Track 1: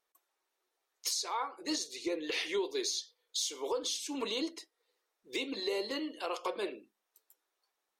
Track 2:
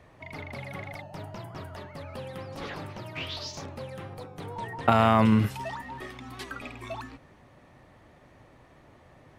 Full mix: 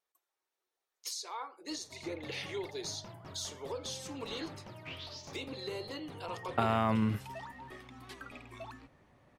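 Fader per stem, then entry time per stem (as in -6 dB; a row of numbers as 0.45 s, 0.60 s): -6.0 dB, -9.0 dB; 0.00 s, 1.70 s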